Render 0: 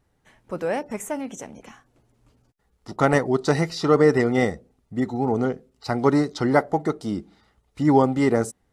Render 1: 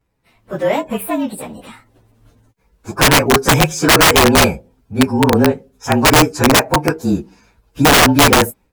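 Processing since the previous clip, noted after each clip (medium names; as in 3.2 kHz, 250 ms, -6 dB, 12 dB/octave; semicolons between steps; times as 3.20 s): frequency axis rescaled in octaves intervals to 110%; integer overflow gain 16 dB; level rider gain up to 10 dB; trim +2.5 dB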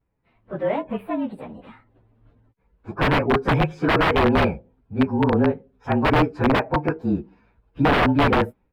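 vibrato 0.44 Hz 7.7 cents; distance through air 450 m; trim -5.5 dB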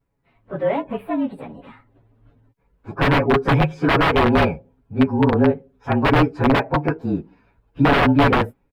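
comb 7.2 ms, depth 36%; trim +1.5 dB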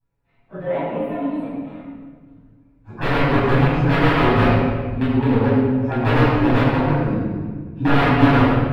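reverberation RT60 1.6 s, pre-delay 11 ms, DRR -9.5 dB; trim -13.5 dB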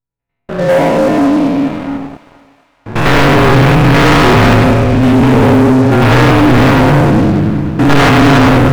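spectrogram pixelated in time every 100 ms; waveshaping leveller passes 5; thinning echo 463 ms, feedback 41%, high-pass 770 Hz, level -17 dB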